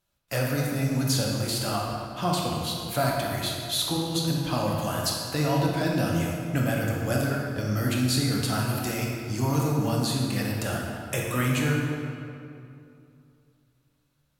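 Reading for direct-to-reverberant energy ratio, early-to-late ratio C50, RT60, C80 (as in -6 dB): -2.5 dB, 0.0 dB, 2.6 s, 1.5 dB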